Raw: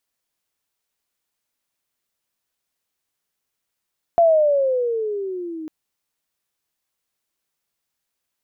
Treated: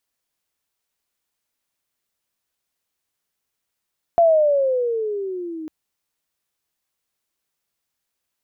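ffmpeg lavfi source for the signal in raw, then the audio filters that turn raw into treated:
-f lavfi -i "aevalsrc='pow(10,(-10-19*t/1.5)/20)*sin(2*PI*690*1.5/(-14*log(2)/12)*(exp(-14*log(2)/12*t/1.5)-1))':duration=1.5:sample_rate=44100"
-af "equalizer=frequency=65:width_type=o:width=0.77:gain=2.5"

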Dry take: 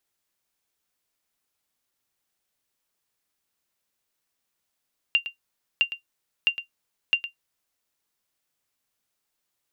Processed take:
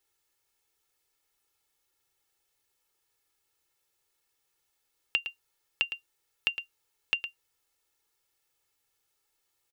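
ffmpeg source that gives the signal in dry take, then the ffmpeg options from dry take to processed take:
-f lavfi -i "aevalsrc='0.282*(sin(2*PI*2780*mod(t,0.66))*exp(-6.91*mod(t,0.66)/0.12)+0.237*sin(2*PI*2780*max(mod(t,0.66)-0.11,0))*exp(-6.91*max(mod(t,0.66)-0.11,0)/0.12))':duration=2.64:sample_rate=44100"
-af "aecho=1:1:2.3:0.82,acompressor=threshold=-24dB:ratio=6"

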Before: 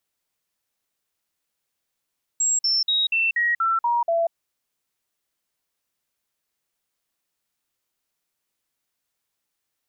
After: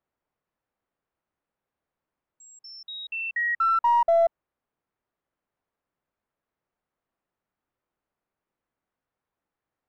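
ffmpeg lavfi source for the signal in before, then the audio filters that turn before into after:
-f lavfi -i "aevalsrc='0.126*clip(min(mod(t,0.24),0.19-mod(t,0.24))/0.005,0,1)*sin(2*PI*7590*pow(2,-floor(t/0.24)/2)*mod(t,0.24))':duration=1.92:sample_rate=44100"
-filter_complex "[0:a]lowpass=1300,asplit=2[link_01][link_02];[link_02]aeval=exprs='clip(val(0),-1,0.0562)':channel_layout=same,volume=-7dB[link_03];[link_01][link_03]amix=inputs=2:normalize=0"

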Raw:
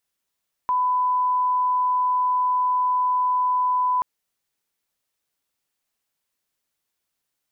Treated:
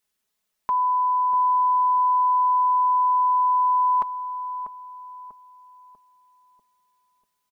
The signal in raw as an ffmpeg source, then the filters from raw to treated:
-f lavfi -i "sine=frequency=1000:duration=3.33:sample_rate=44100,volume=0.06dB"
-filter_complex "[0:a]aecho=1:1:4.7:0.65,asplit=2[link_01][link_02];[link_02]adelay=643,lowpass=frequency=840:poles=1,volume=-7.5dB,asplit=2[link_03][link_04];[link_04]adelay=643,lowpass=frequency=840:poles=1,volume=0.52,asplit=2[link_05][link_06];[link_06]adelay=643,lowpass=frequency=840:poles=1,volume=0.52,asplit=2[link_07][link_08];[link_08]adelay=643,lowpass=frequency=840:poles=1,volume=0.52,asplit=2[link_09][link_10];[link_10]adelay=643,lowpass=frequency=840:poles=1,volume=0.52,asplit=2[link_11][link_12];[link_12]adelay=643,lowpass=frequency=840:poles=1,volume=0.52[link_13];[link_03][link_05][link_07][link_09][link_11][link_13]amix=inputs=6:normalize=0[link_14];[link_01][link_14]amix=inputs=2:normalize=0"

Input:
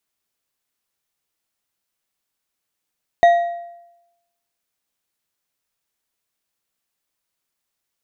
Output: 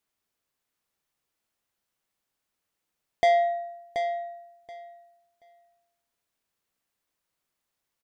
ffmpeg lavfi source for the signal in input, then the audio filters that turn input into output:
-f lavfi -i "aevalsrc='0.501*pow(10,-3*t/0.92)*sin(2*PI*690*t)+0.126*pow(10,-3*t/0.679)*sin(2*PI*1902.3*t)+0.0316*pow(10,-3*t/0.555)*sin(2*PI*3728.8*t)+0.00794*pow(10,-3*t/0.477)*sin(2*PI*6163.8*t)+0.002*pow(10,-3*t/0.423)*sin(2*PI*9204.6*t)':duration=1.55:sample_rate=44100"
-filter_complex "[0:a]highshelf=frequency=2600:gain=-5.5,asoftclip=type=tanh:threshold=-17dB,asplit=2[link_01][link_02];[link_02]aecho=0:1:729|1458|2187:0.398|0.0677|0.0115[link_03];[link_01][link_03]amix=inputs=2:normalize=0"

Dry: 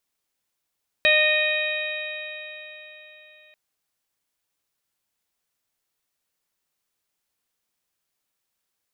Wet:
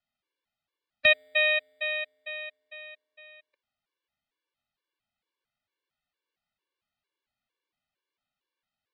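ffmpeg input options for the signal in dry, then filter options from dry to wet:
-f lavfi -i "aevalsrc='0.0891*pow(10,-3*t/3.98)*sin(2*PI*611.58*t)+0.0126*pow(10,-3*t/3.98)*sin(2*PI*1226.63*t)+0.1*pow(10,-3*t/3.98)*sin(2*PI*1848.61*t)+0.141*pow(10,-3*t/3.98)*sin(2*PI*2480.87*t)+0.0355*pow(10,-3*t/3.98)*sin(2*PI*3126.71*t)+0.075*pow(10,-3*t/3.98)*sin(2*PI*3789.3*t)':duration=2.49:sample_rate=44100"
-filter_complex "[0:a]lowpass=frequency=4000:width=0.5412,lowpass=frequency=4000:width=1.3066,acrossover=split=220|530|2300[link_01][link_02][link_03][link_04];[link_01]acrusher=samples=32:mix=1:aa=0.000001[link_05];[link_05][link_02][link_03][link_04]amix=inputs=4:normalize=0,afftfilt=real='re*gt(sin(2*PI*2.2*pts/sr)*(1-2*mod(floor(b*sr/1024/300),2)),0)':imag='im*gt(sin(2*PI*2.2*pts/sr)*(1-2*mod(floor(b*sr/1024/300),2)),0)':win_size=1024:overlap=0.75"

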